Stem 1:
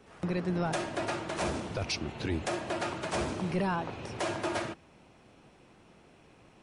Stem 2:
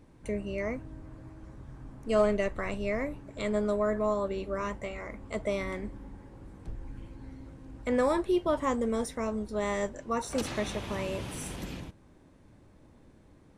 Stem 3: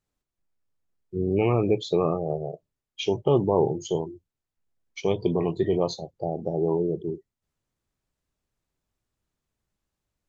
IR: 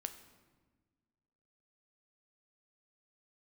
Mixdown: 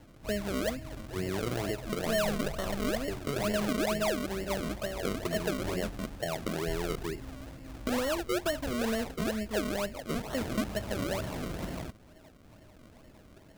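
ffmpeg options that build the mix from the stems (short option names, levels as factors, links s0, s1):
-filter_complex "[0:a]lowpass=f=970:t=q:w=2.2,adelay=900,volume=0.15[s0];[1:a]asoftclip=type=tanh:threshold=0.0668,volume=1.19[s1];[2:a]lowpass=1800,acompressor=threshold=0.0562:ratio=6,volume=0.596[s2];[s0][s1][s2]amix=inputs=3:normalize=0,equalizer=f=640:w=7.9:g=15,acrossover=split=300[s3][s4];[s4]acompressor=threshold=0.0251:ratio=6[s5];[s3][s5]amix=inputs=2:normalize=0,acrusher=samples=35:mix=1:aa=0.000001:lfo=1:lforange=35:lforate=2.2"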